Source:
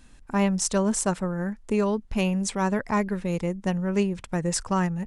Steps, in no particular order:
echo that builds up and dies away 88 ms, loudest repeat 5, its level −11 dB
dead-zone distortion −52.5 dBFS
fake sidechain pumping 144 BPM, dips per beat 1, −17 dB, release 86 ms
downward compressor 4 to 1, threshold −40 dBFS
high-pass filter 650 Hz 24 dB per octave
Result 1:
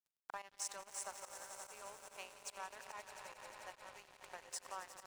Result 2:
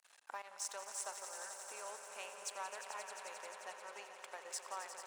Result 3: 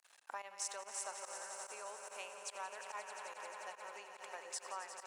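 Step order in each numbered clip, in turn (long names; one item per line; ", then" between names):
echo that builds up and dies away, then downward compressor, then high-pass filter, then dead-zone distortion, then fake sidechain pumping
downward compressor, then fake sidechain pumping, then echo that builds up and dies away, then dead-zone distortion, then high-pass filter
echo that builds up and dies away, then fake sidechain pumping, then dead-zone distortion, then downward compressor, then high-pass filter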